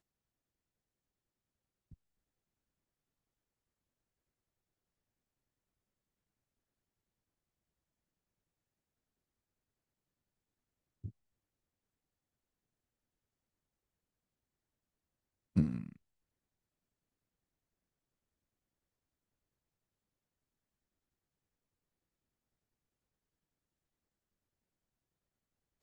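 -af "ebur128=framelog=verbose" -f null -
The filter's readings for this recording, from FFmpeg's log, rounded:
Integrated loudness:
  I:         -35.6 LUFS
  Threshold: -49.8 LUFS
Loudness range:
  LRA:        17.6 LU
  Threshold: -65.8 LUFS
  LRA low:   -60.3 LUFS
  LRA high:  -42.6 LUFS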